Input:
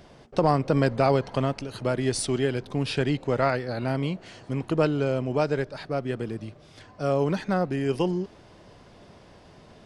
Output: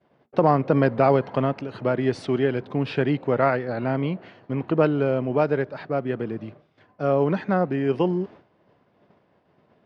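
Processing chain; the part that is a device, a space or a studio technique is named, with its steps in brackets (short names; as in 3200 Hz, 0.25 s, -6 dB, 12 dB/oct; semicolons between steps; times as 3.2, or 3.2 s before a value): hearing-loss simulation (LPF 2300 Hz 12 dB/oct; expander -41 dBFS); HPF 130 Hz 12 dB/oct; 3.34–4.74 LPF 5800 Hz 12 dB/oct; gain +3.5 dB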